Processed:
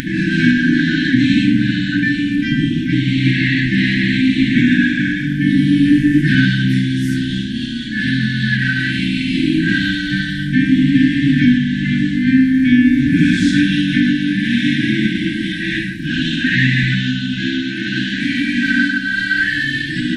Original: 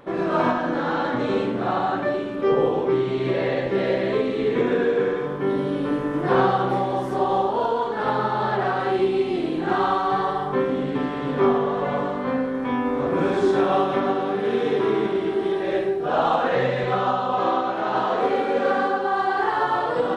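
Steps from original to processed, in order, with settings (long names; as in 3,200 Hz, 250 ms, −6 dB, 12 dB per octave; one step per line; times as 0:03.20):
upward compression, threshold −26 dBFS
linear-phase brick-wall band-stop 320–1,500 Hz
boost into a limiter +16 dB
level −1 dB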